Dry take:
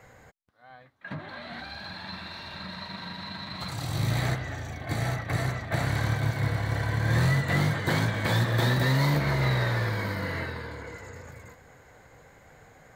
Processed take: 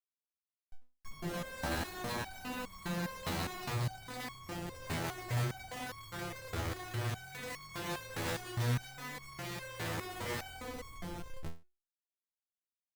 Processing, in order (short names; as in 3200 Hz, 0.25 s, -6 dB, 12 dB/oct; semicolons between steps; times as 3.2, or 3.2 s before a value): downsampling 22050 Hz; Schmitt trigger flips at -38.5 dBFS; stepped resonator 4.9 Hz 83–1100 Hz; gain +3 dB